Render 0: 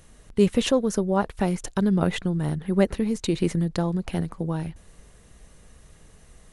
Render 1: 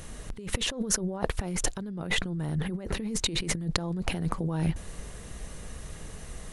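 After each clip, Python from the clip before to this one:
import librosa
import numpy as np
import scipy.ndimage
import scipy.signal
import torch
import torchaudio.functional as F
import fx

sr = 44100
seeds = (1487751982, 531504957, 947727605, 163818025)

y = fx.over_compress(x, sr, threshold_db=-33.0, ratio=-1.0)
y = F.gain(torch.from_numpy(y), 2.0).numpy()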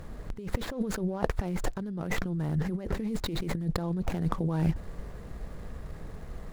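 y = scipy.ndimage.median_filter(x, 15, mode='constant')
y = F.gain(torch.from_numpy(y), 1.0).numpy()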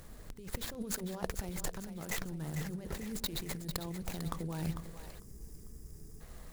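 y = scipy.signal.lfilter([1.0, -0.8], [1.0], x)
y = fx.echo_split(y, sr, split_hz=420.0, low_ms=96, high_ms=448, feedback_pct=52, wet_db=-9.5)
y = fx.spec_box(y, sr, start_s=5.19, length_s=1.02, low_hz=470.0, high_hz=4700.0, gain_db=-15)
y = F.gain(torch.from_numpy(y), 4.0).numpy()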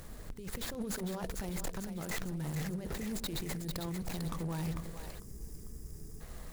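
y = np.clip(10.0 ** (36.0 / 20.0) * x, -1.0, 1.0) / 10.0 ** (36.0 / 20.0)
y = F.gain(torch.from_numpy(y), 3.5).numpy()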